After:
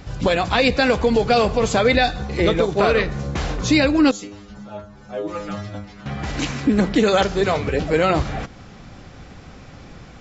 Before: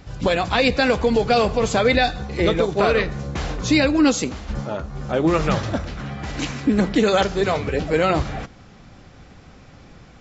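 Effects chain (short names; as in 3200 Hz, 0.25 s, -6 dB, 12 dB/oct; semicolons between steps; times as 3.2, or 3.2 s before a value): in parallel at -3 dB: compressor, threshold -32 dBFS, peak gain reduction 18 dB; 4.11–6.06 on the sum: metallic resonator 100 Hz, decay 0.39 s, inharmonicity 0.002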